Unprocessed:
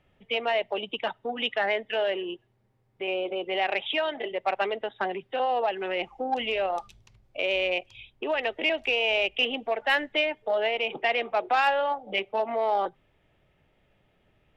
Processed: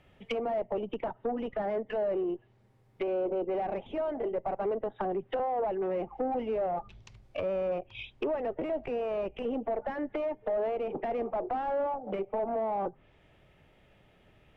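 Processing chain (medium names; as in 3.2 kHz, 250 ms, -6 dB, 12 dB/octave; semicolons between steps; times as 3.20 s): valve stage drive 30 dB, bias 0.25; low-pass that closes with the level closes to 690 Hz, closed at -33.5 dBFS; trim +5.5 dB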